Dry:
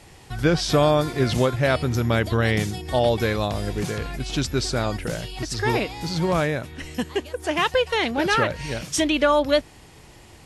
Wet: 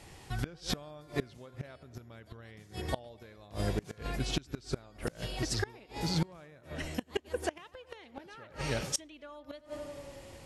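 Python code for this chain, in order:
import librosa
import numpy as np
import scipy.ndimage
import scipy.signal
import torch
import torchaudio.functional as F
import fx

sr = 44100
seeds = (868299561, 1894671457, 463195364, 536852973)

y = fx.echo_tape(x, sr, ms=91, feedback_pct=82, wet_db=-14, lp_hz=2100.0, drive_db=10.0, wow_cents=31)
y = fx.gate_flip(y, sr, shuts_db=-14.0, range_db=-26)
y = F.gain(torch.from_numpy(y), -4.5).numpy()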